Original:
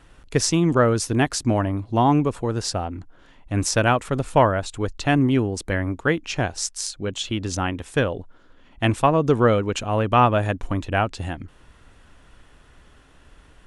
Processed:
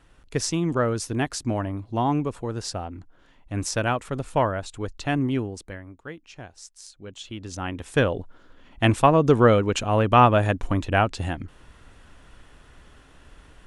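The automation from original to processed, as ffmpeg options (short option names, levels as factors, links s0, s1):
-af "volume=4.47,afade=t=out:st=5.36:d=0.46:silence=0.251189,afade=t=in:st=6.76:d=0.81:silence=0.354813,afade=t=in:st=7.57:d=0.48:silence=0.334965"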